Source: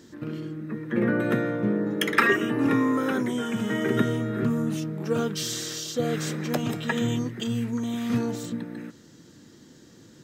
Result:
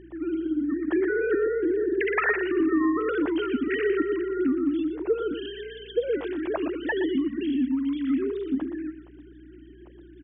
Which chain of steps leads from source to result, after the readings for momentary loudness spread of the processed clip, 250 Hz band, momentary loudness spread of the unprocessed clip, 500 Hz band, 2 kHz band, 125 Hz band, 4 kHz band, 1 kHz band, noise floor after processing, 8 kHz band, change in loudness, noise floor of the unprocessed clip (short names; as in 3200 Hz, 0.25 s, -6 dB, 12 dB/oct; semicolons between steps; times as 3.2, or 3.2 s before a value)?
7 LU, 0.0 dB, 12 LU, +4.0 dB, -1.5 dB, under -15 dB, -8.5 dB, -3.5 dB, -48 dBFS, under -40 dB, 0.0 dB, -52 dBFS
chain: sine-wave speech; low shelf 230 Hz +10 dB; compressor 5:1, threshold -21 dBFS, peak gain reduction 9 dB; hum 60 Hz, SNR 26 dB; on a send: echo 0.12 s -10 dB